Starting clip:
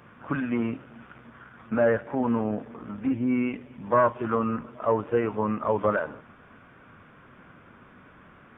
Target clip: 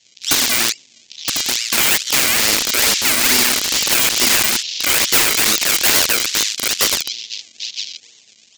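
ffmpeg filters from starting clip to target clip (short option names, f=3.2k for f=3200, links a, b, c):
-filter_complex "[0:a]asettb=1/sr,asplit=3[a][b][c];[a]atrim=end=2.124[d];[b]atrim=start=2.12:end=4.35,asetpts=PTS-STARTPTS,afade=t=in:d=0.004:c=qsin,afade=t=out:st=2.226:d=0.004:c=qsin,aeval=exprs='val(0)+0.5*0.0282*sgn(val(0))':c=same[e];[c]atrim=start=4.346[f];[d][e]acrossfade=d=0.004:c1=hsin:c2=qsin[g];[g][f]acrossfade=d=0.004:c1=qsin:c2=hsin,acrossover=split=540|2400[h][i][j];[h]acompressor=threshold=-24dB:ratio=4[k];[i]acompressor=threshold=-29dB:ratio=4[l];[j]acompressor=threshold=-49dB:ratio=4[m];[k][l][m]amix=inputs=3:normalize=0,asplit=2[n][o];[o]adelay=966,lowpass=f=2.9k:p=1,volume=-5.5dB,asplit=2[p][q];[q]adelay=966,lowpass=f=2.9k:p=1,volume=0.34,asplit=2[r][s];[s]adelay=966,lowpass=f=2.9k:p=1,volume=0.34,asplit=2[t][u];[u]adelay=966,lowpass=f=2.9k:p=1,volume=0.34[v];[n][p][r][t][v]amix=inputs=5:normalize=0,acrusher=samples=34:mix=1:aa=0.000001:lfo=1:lforange=34:lforate=2.3,afftfilt=real='re*lt(hypot(re,im),0.0708)':imag='im*lt(hypot(re,im),0.0708)':win_size=1024:overlap=0.75,aexciter=amount=8.3:drive=9.5:freq=2.1k,lowshelf=f=140:g=-11,aresample=16000,aresample=44100,crystalizer=i=1.5:c=0,afwtdn=0.0501,aeval=exprs='(mod(1.88*val(0)+1,2)-1)/1.88':c=same,adynamicequalizer=threshold=0.00708:dfrequency=300:dqfactor=1.3:tfrequency=300:tqfactor=1.3:attack=5:release=100:ratio=0.375:range=2.5:mode=boostabove:tftype=bell"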